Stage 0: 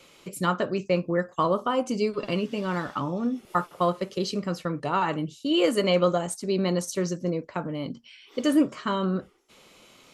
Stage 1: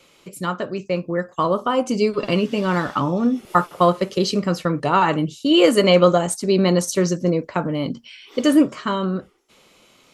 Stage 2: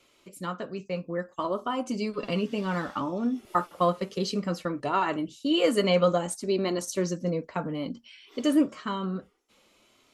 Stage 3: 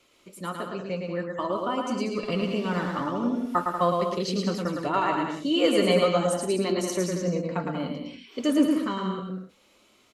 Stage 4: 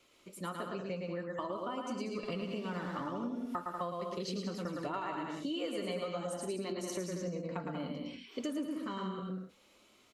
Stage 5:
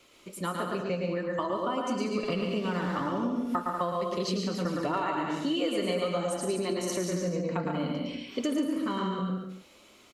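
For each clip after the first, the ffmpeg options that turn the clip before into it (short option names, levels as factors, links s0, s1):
-af "dynaudnorm=f=200:g=17:m=3.76"
-af "flanger=delay=2.9:depth=1.5:regen=-46:speed=0.6:shape=sinusoidal,volume=0.562"
-af "aecho=1:1:110|187|240.9|278.6|305:0.631|0.398|0.251|0.158|0.1"
-af "acompressor=threshold=0.0282:ratio=6,volume=0.631"
-af "aecho=1:1:143:0.398,volume=2.37"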